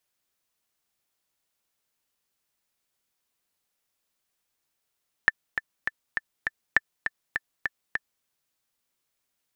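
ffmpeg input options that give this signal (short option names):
-f lavfi -i "aevalsrc='pow(10,(-4.5-8.5*gte(mod(t,5*60/202),60/202))/20)*sin(2*PI*1770*mod(t,60/202))*exp(-6.91*mod(t,60/202)/0.03)':d=2.97:s=44100"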